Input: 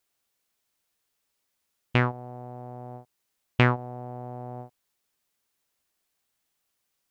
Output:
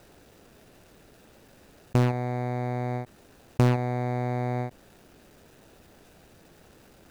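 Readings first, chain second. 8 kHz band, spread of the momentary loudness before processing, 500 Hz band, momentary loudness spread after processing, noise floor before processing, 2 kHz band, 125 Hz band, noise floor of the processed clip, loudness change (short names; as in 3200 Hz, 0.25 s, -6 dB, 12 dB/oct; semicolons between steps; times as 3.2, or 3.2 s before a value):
n/a, 19 LU, +3.5 dB, 11 LU, -79 dBFS, -7.5 dB, +3.5 dB, -56 dBFS, 0.0 dB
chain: median filter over 41 samples; fast leveller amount 50%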